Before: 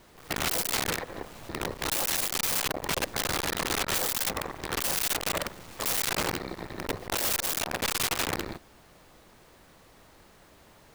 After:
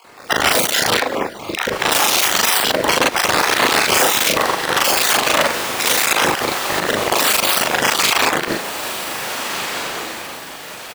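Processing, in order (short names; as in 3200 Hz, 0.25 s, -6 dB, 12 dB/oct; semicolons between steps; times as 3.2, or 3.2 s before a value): random spectral dropouts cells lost 29%; HPF 560 Hz 6 dB/oct; high shelf 6100 Hz -9 dB; harmoniser -12 st -11 dB; AM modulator 40 Hz, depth 55%; doubler 39 ms -2 dB; diffused feedback echo 1.643 s, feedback 51%, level -12 dB; maximiser +30 dB; upward expander 1.5:1, over -27 dBFS; gain -3 dB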